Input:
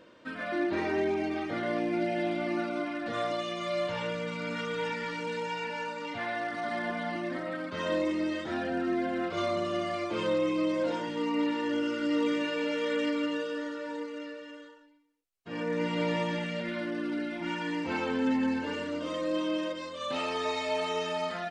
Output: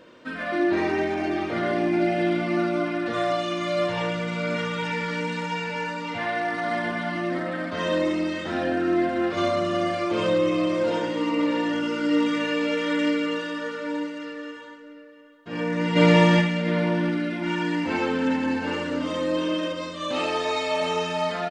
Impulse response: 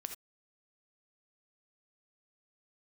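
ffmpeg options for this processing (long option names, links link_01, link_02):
-filter_complex "[0:a]asplit=3[link_01][link_02][link_03];[link_01]afade=type=out:start_time=15.95:duration=0.02[link_04];[link_02]acontrast=86,afade=type=in:start_time=15.95:duration=0.02,afade=type=out:start_time=16.4:duration=0.02[link_05];[link_03]afade=type=in:start_time=16.4:duration=0.02[link_06];[link_04][link_05][link_06]amix=inputs=3:normalize=0,asplit=2[link_07][link_08];[link_08]adelay=699.7,volume=-10dB,highshelf=frequency=4000:gain=-15.7[link_09];[link_07][link_09]amix=inputs=2:normalize=0[link_10];[1:a]atrim=start_sample=2205[link_11];[link_10][link_11]afir=irnorm=-1:irlink=0,volume=8dB"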